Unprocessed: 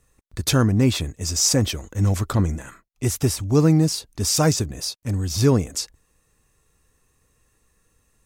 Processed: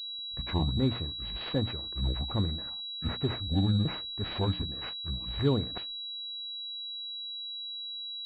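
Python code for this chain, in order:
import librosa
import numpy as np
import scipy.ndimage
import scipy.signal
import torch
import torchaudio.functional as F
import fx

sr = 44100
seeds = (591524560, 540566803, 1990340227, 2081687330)

y = fx.pitch_trill(x, sr, semitones=-7.5, every_ms=385)
y = fx.hum_notches(y, sr, base_hz=60, count=5)
y = fx.pwm(y, sr, carrier_hz=3900.0)
y = y * 10.0 ** (-9.0 / 20.0)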